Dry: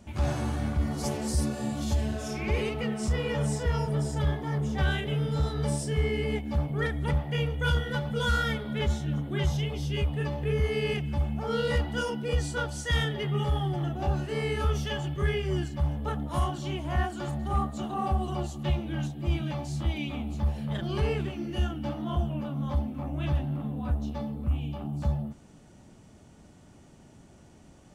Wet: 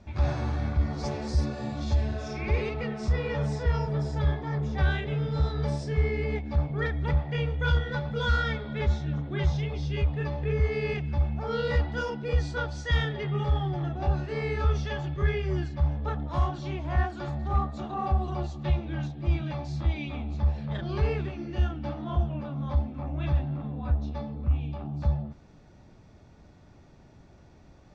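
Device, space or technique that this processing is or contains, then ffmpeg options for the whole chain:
low shelf boost with a cut just above: -af "lowpass=f=5200:w=0.5412,lowpass=f=5200:w=1.3066,lowshelf=f=91:g=5,equalizer=f=220:t=o:w=1:g=-4.5,bandreject=f=3000:w=6.7"

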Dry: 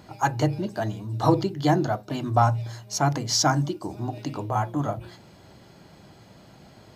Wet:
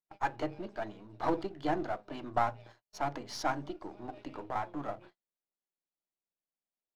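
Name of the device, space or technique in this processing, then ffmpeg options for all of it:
crystal radio: -af "highpass=290,lowpass=3000,aeval=exprs='if(lt(val(0),0),0.447*val(0),val(0))':c=same,agate=range=0.00708:threshold=0.00562:ratio=16:detection=peak,volume=0.501"

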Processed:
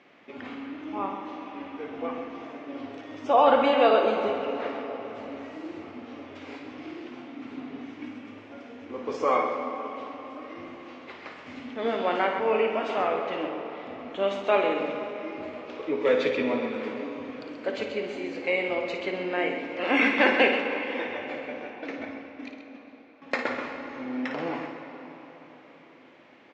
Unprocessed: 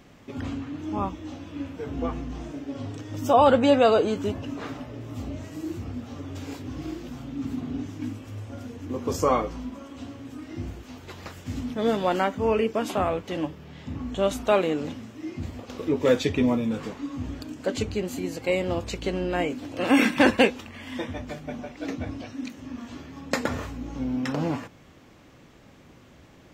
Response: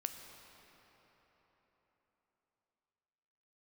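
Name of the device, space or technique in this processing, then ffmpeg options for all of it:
station announcement: -filter_complex "[0:a]asettb=1/sr,asplit=3[s0][s1][s2];[s0]atrim=end=21.704[s3];[s1]atrim=start=21.7:end=23.22,asetpts=PTS-STARTPTS,afade=t=in:d=0.004:c=qsin,afade=t=out:st=1.516:d=0.004:c=qsin,agate=range=0.126:threshold=0.0224:ratio=16:detection=peak[s4];[s2]atrim=start=23.216[s5];[s3][s4]acrossfade=d=0.004:c1=hsin:c2=qsin[s6];[s6][s5]acrossfade=d=0.004:c1=qsin:c2=hsin,highpass=350,lowpass=3600,lowpass=6300,equalizer=f=2200:t=o:w=0.46:g=6,aecho=1:1:55.39|131.2:0.398|0.355[s7];[1:a]atrim=start_sample=2205[s8];[s7][s8]afir=irnorm=-1:irlink=0"

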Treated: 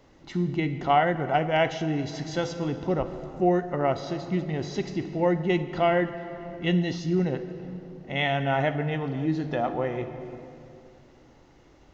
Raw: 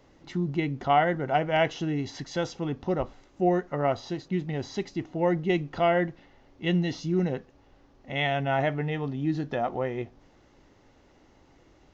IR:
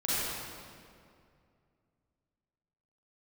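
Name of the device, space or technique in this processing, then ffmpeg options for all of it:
compressed reverb return: -filter_complex "[0:a]asplit=2[s0][s1];[1:a]atrim=start_sample=2205[s2];[s1][s2]afir=irnorm=-1:irlink=0,acompressor=threshold=0.126:ratio=6,volume=0.2[s3];[s0][s3]amix=inputs=2:normalize=0"

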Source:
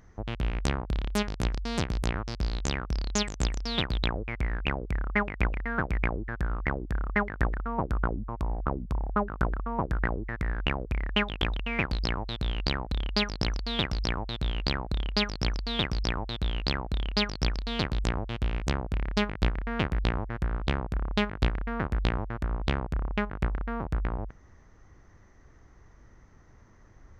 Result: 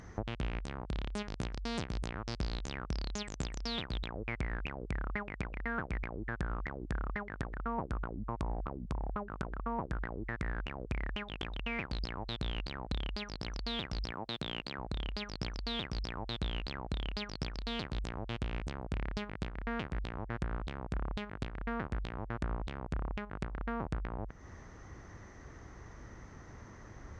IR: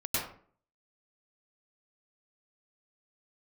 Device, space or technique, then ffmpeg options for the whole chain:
podcast mastering chain: -filter_complex "[0:a]asettb=1/sr,asplit=3[s0][s1][s2];[s0]atrim=end=14.114[s3];[s1]atrim=start=14.11:end=14.78,asetpts=PTS-STARTPTS,afade=t=in:d=0.004:c=qsin,afade=t=out:st=0.666:d=0.004:c=qsin,highpass=150[s4];[s2]atrim=start=14.776[s5];[s3][s4]acrossfade=d=0.004:c1=hsin:c2=qsin[s6];[s6][s5]acrossfade=d=0.004:c1=qsin:c2=hsin,highpass=f=63:p=1,deesser=0.55,acompressor=threshold=0.00708:ratio=3,alimiter=level_in=1.78:limit=0.0631:level=0:latency=1:release=198,volume=0.562,volume=2.51" -ar 22050 -c:a libmp3lame -b:a 128k

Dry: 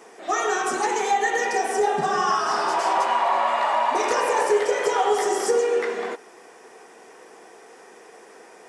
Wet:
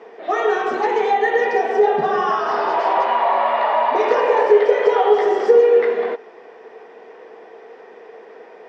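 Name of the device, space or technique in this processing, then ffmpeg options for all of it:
guitar cabinet: -af "highpass=95,equalizer=f=230:t=q:w=4:g=3,equalizer=f=450:t=q:w=4:g=10,equalizer=f=640:t=q:w=4:g=6,equalizer=f=920:t=q:w=4:g=3,equalizer=f=1900:t=q:w=4:g=3,lowpass=f=4000:w=0.5412,lowpass=f=4000:w=1.3066"

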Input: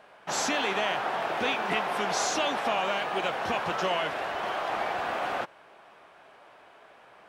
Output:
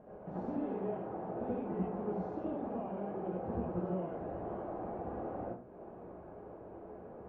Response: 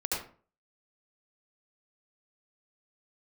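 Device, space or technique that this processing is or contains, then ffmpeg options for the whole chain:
television next door: -filter_complex "[0:a]acompressor=threshold=0.00447:ratio=3,lowpass=280[s0];[1:a]atrim=start_sample=2205[s1];[s0][s1]afir=irnorm=-1:irlink=0,volume=3.98"

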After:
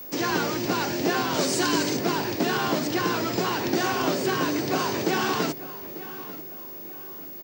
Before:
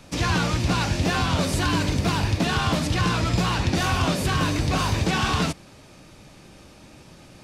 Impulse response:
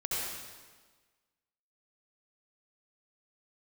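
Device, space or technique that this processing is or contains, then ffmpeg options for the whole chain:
old television with a line whistle: -filter_complex "[0:a]asettb=1/sr,asplit=3[s0][s1][s2];[s0]atrim=end=1.344[s3];[s1]atrim=start=1.34:end=1.97,asetpts=PTS-STARTPTS,afade=t=in:d=0.004:c=qsin,afade=t=out:st=0.626:d=0.004:c=qsin,highshelf=f=4900:g=11[s4];[s2]atrim=start=1.966[s5];[s3][s4]acrossfade=d=0.004:c1=hsin:c2=qsin[s6];[s6][s5]acrossfade=d=0.004:c1=qsin:c2=hsin,highpass=f=170:w=0.5412,highpass=f=170:w=1.3066,equalizer=f=180:t=q:w=4:g=-8,equalizer=f=380:t=q:w=4:g=8,equalizer=f=1200:t=q:w=4:g=-3,equalizer=f=2500:t=q:w=4:g=-5,equalizer=f=3600:t=q:w=4:g=-6,lowpass=f=7600:w=0.5412,lowpass=f=7600:w=1.3066,asplit=2[s7][s8];[s8]adelay=893,lowpass=f=3600:p=1,volume=0.168,asplit=2[s9][s10];[s10]adelay=893,lowpass=f=3600:p=1,volume=0.38,asplit=2[s11][s12];[s12]adelay=893,lowpass=f=3600:p=1,volume=0.38[s13];[s7][s9][s11][s13]amix=inputs=4:normalize=0,aeval=exprs='val(0)+0.0141*sin(2*PI*15625*n/s)':c=same"

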